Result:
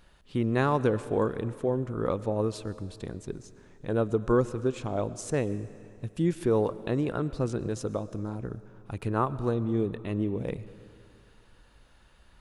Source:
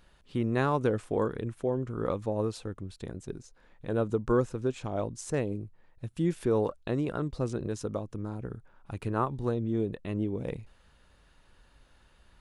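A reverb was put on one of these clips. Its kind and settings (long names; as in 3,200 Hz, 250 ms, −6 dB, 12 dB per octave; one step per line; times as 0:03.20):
comb and all-pass reverb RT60 2.5 s, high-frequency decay 0.9×, pre-delay 75 ms, DRR 16 dB
level +2 dB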